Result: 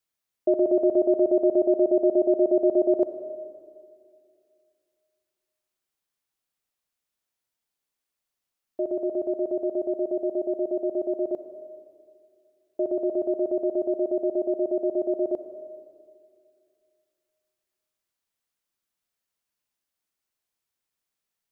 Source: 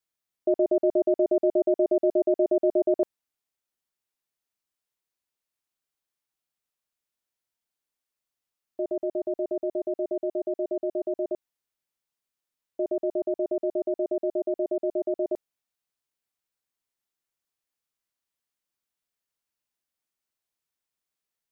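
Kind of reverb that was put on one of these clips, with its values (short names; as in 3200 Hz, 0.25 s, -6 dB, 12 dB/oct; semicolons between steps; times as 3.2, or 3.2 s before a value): digital reverb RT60 2.4 s, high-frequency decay 0.45×, pre-delay 20 ms, DRR 10.5 dB; gain +2 dB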